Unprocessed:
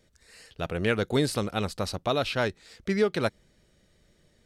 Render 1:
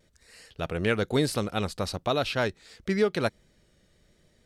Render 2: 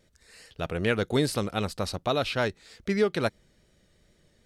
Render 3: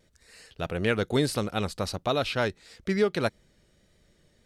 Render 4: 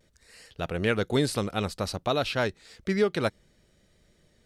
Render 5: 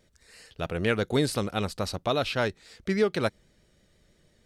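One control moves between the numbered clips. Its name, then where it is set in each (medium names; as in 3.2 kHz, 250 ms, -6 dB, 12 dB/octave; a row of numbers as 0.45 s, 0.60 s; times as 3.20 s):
vibrato, rate: 0.99 Hz, 2.5 Hz, 1.6 Hz, 0.57 Hz, 6.1 Hz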